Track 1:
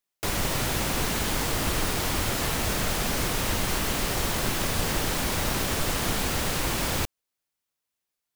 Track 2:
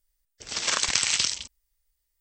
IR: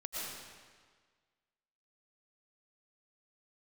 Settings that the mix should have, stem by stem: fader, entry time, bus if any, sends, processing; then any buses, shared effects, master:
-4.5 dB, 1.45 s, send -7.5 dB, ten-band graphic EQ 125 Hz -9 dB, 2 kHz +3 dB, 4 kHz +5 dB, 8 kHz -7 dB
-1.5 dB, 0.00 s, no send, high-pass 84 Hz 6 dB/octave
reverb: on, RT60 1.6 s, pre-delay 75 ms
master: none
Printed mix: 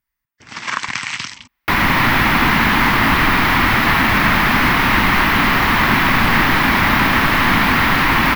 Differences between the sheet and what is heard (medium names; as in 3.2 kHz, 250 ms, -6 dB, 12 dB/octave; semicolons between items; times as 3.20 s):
stem 1 -4.5 dB -> +4.5 dB; master: extra graphic EQ 125/250/500/1000/2000/4000/8000 Hz +11/+10/-8/+11/+9/-3/-9 dB